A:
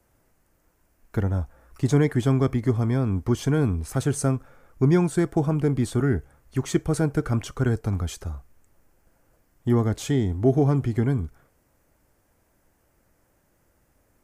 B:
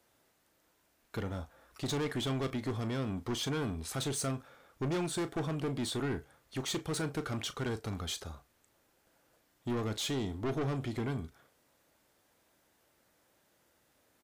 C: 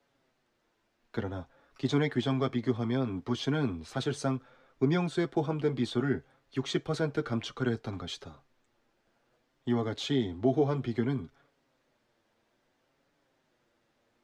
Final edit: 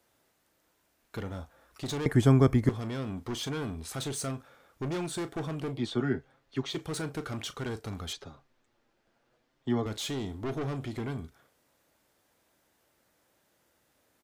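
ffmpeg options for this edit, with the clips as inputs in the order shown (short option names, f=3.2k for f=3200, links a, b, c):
-filter_complex "[2:a]asplit=2[a][b];[1:a]asplit=4[c][d][e][f];[c]atrim=end=2.062[g];[0:a]atrim=start=2.058:end=2.692[h];[d]atrim=start=2.688:end=5.85[i];[a]atrim=start=5.69:end=6.83[j];[e]atrim=start=6.67:end=8.132[k];[b]atrim=start=8.128:end=9.862[l];[f]atrim=start=9.858[m];[g][h]acrossfade=d=0.004:c1=hsin:c2=hsin[n];[n][i]acrossfade=d=0.004:c1=hsin:c2=hsin[o];[o][j]acrossfade=d=0.16:c1=tri:c2=tri[p];[p][k]acrossfade=d=0.16:c1=tri:c2=tri[q];[q][l]acrossfade=d=0.004:c1=hsin:c2=hsin[r];[r][m]acrossfade=d=0.004:c1=hsin:c2=hsin"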